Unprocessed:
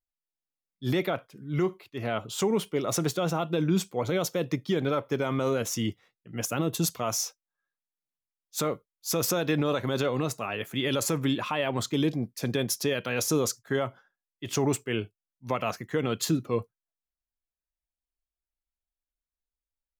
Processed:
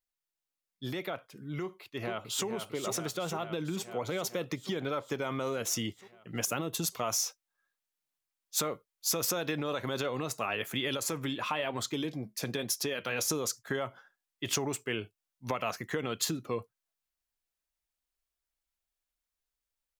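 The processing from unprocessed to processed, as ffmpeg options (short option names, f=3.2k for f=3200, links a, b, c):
-filter_complex "[0:a]asplit=2[a][b];[b]afade=t=in:st=1.62:d=0.01,afade=t=out:st=2.47:d=0.01,aecho=0:1:450|900|1350|1800|2250|2700|3150|3600|4050|4500:0.562341|0.365522|0.237589|0.154433|0.100381|0.0652479|0.0424112|0.0275673|0.0179187|0.0116472[c];[a][c]amix=inputs=2:normalize=0,asettb=1/sr,asplit=3[d][e][f];[d]atrim=end=10.974[g];[e]atrim=start=10.97:end=13.3,asetpts=PTS-STARTPTS,afade=t=in:d=0.004:c=qsin,afade=t=out:st=2.326:d=0.004:c=qsin,flanger=delay=2.4:depth=4.7:regen=-71:speed=1.1:shape=sinusoidal[h];[f]atrim=start=13.296[i];[g][h]acrossfade=d=0.004:c1=hsin:c2=qsin[j];[j][i]acrossfade=d=0.004:c1=qsin:c2=hsin,acompressor=threshold=-33dB:ratio=5,lowshelf=f=420:g=-7,dynaudnorm=f=230:g=31:m=3dB,volume=3dB"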